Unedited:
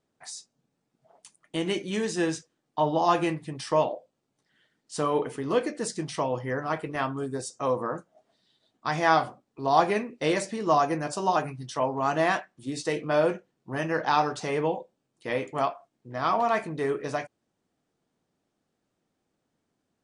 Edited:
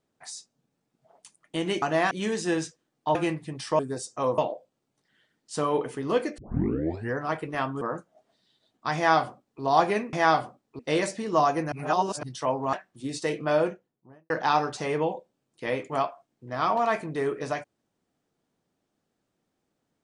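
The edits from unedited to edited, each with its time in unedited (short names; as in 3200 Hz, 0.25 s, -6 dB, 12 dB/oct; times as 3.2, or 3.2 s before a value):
2.86–3.15 cut
5.79 tape start 0.76 s
7.22–7.81 move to 3.79
8.96–9.62 copy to 10.13
11.06–11.57 reverse
12.07–12.36 move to 1.82
13.11–13.93 studio fade out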